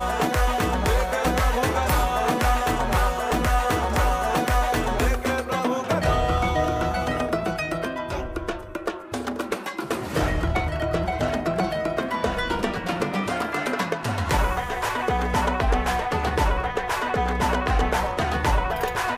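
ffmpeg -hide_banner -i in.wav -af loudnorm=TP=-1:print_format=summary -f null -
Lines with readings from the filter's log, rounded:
Input Integrated:    -24.2 LUFS
Input True Peak:      -9.7 dBTP
Input LRA:             3.4 LU
Input Threshold:     -34.2 LUFS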